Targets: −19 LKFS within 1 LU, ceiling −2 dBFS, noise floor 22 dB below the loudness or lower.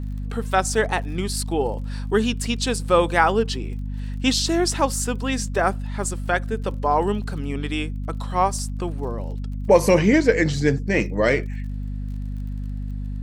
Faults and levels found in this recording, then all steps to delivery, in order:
crackle rate 34 per second; mains hum 50 Hz; hum harmonics up to 250 Hz; level of the hum −26 dBFS; integrated loudness −23.0 LKFS; sample peak −2.5 dBFS; target loudness −19.0 LKFS
→ click removal
mains-hum notches 50/100/150/200/250 Hz
level +4 dB
brickwall limiter −2 dBFS

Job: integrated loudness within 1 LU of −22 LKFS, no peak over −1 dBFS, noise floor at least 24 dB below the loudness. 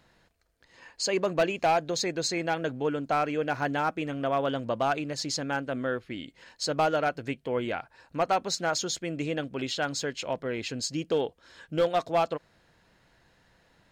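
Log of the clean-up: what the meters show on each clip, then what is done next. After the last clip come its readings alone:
share of clipped samples 0.5%; peaks flattened at −18.0 dBFS; integrated loudness −29.5 LKFS; sample peak −18.0 dBFS; target loudness −22.0 LKFS
→ clipped peaks rebuilt −18 dBFS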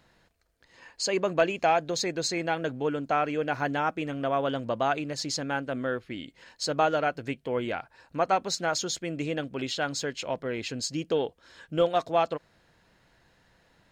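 share of clipped samples 0.0%; integrated loudness −29.0 LKFS; sample peak −10.5 dBFS; target loudness −22.0 LKFS
→ level +7 dB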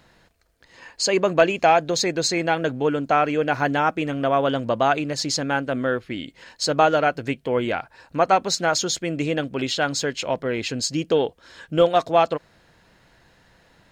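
integrated loudness −22.0 LKFS; sample peak −3.5 dBFS; background noise floor −58 dBFS

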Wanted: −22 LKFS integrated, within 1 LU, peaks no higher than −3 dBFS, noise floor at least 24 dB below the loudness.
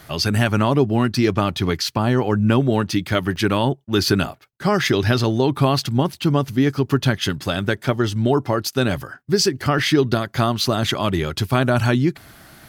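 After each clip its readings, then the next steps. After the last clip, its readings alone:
number of dropouts 3; longest dropout 2.1 ms; integrated loudness −20.0 LKFS; sample peak −4.5 dBFS; target loudness −22.0 LKFS
→ repair the gap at 0:03.36/0:04.84/0:09.79, 2.1 ms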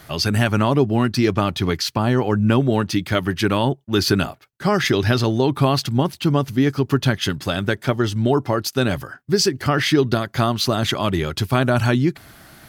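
number of dropouts 0; integrated loudness −20.0 LKFS; sample peak −4.5 dBFS; target loudness −22.0 LKFS
→ level −2 dB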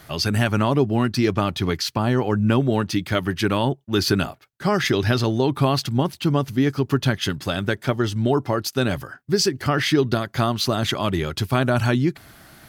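integrated loudness −22.0 LKFS; sample peak −6.5 dBFS; background noise floor −53 dBFS

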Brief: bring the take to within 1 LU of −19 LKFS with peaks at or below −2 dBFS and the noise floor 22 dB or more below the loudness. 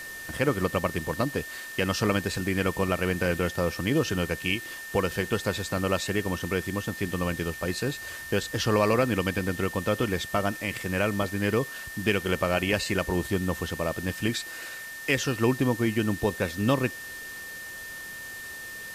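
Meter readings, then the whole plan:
interfering tone 1,800 Hz; level of the tone −38 dBFS; background noise floor −40 dBFS; target noise floor −50 dBFS; integrated loudness −28.0 LKFS; sample peak −9.0 dBFS; target loudness −19.0 LKFS
→ notch filter 1,800 Hz, Q 30
broadband denoise 10 dB, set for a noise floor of −40 dBFS
level +9 dB
brickwall limiter −2 dBFS

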